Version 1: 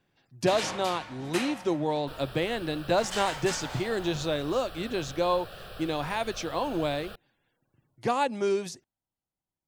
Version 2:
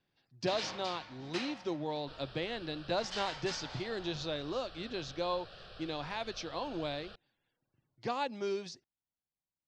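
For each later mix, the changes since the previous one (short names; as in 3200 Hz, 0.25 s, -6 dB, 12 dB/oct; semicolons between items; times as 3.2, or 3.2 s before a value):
master: add ladder low-pass 5700 Hz, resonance 45%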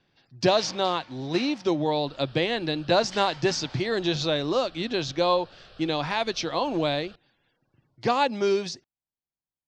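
speech +12.0 dB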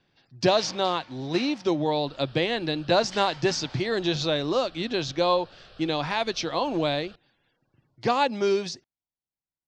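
none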